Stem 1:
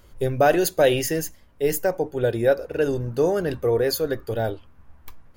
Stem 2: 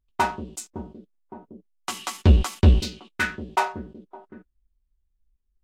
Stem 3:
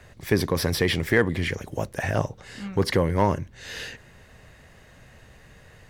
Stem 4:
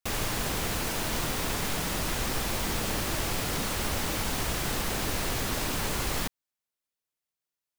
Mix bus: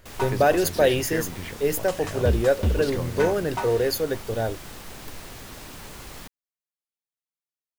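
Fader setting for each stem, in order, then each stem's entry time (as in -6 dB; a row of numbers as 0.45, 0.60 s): -1.5, -8.0, -10.0, -10.5 dB; 0.00, 0.00, 0.00, 0.00 s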